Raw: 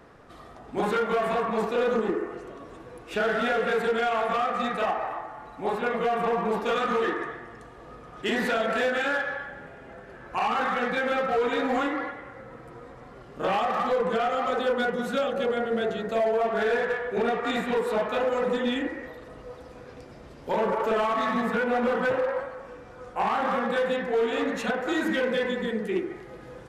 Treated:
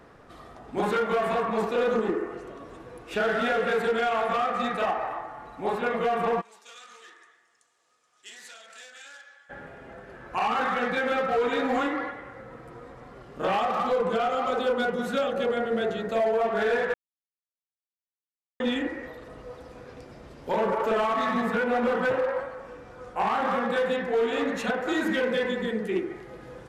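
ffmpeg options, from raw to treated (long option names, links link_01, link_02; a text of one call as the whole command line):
ffmpeg -i in.wav -filter_complex "[0:a]asplit=3[link_01][link_02][link_03];[link_01]afade=type=out:start_time=6.4:duration=0.02[link_04];[link_02]bandpass=frequency=7200:width_type=q:width=2.1,afade=type=in:start_time=6.4:duration=0.02,afade=type=out:start_time=9.49:duration=0.02[link_05];[link_03]afade=type=in:start_time=9.49:duration=0.02[link_06];[link_04][link_05][link_06]amix=inputs=3:normalize=0,asettb=1/sr,asplit=3[link_07][link_08][link_09];[link_07]atrim=end=13.674[link_10];[link_08]atrim=start=13.67:end=15.01,asetpts=PTS-STARTPTS,afade=type=in:duration=0.004:curve=qsin,afade=type=out:start_time=1.336:duration=0.004:curve=qsin,equalizer=frequency=1800:width_type=o:width=0.22:gain=-7.5[link_11];[link_09]atrim=start=15.006[link_12];[link_10][link_11]acrossfade=duration=0.004:curve1=hsin:curve2=qsin[link_13];[link_13][link_12]acrossfade=duration=0.004:curve1=qsin:curve2=hsin,asplit=3[link_14][link_15][link_16];[link_14]atrim=end=16.94,asetpts=PTS-STARTPTS,afade=type=out:start_time=16.936:duration=0.004:curve=hsin[link_17];[link_15]atrim=start=16.94:end=18.6,asetpts=PTS-STARTPTS,volume=0[link_18];[link_16]atrim=start=18.6,asetpts=PTS-STARTPTS,afade=type=in:duration=0.004:curve=hsin[link_19];[link_17][link_18][link_19]concat=n=3:v=0:a=1" out.wav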